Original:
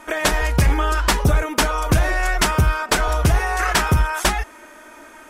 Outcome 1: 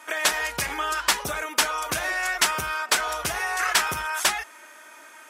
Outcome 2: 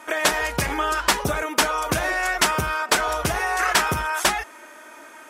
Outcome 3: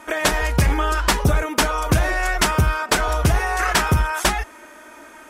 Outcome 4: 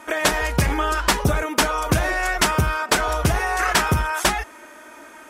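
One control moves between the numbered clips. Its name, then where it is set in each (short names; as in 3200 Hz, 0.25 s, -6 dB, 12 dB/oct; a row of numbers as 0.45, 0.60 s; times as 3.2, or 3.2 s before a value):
HPF, cutoff: 1500, 400, 42, 110 Hz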